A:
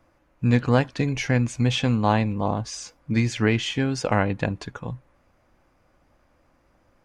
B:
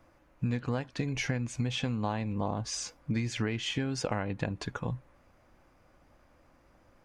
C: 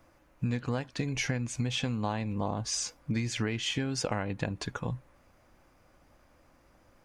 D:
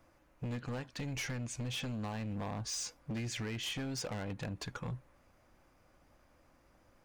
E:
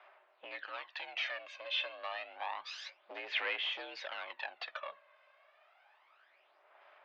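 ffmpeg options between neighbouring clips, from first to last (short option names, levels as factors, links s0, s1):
-af "acompressor=threshold=0.0398:ratio=8"
-af "highshelf=f=4500:g=6"
-af "asoftclip=type=hard:threshold=0.0282,volume=0.631"
-af "highshelf=f=2200:g=10.5,aphaser=in_gain=1:out_gain=1:delay=2:decay=0.6:speed=0.29:type=sinusoidal,highpass=f=520:t=q:w=0.5412,highpass=f=520:t=q:w=1.307,lowpass=f=3500:t=q:w=0.5176,lowpass=f=3500:t=q:w=0.7071,lowpass=f=3500:t=q:w=1.932,afreqshift=63"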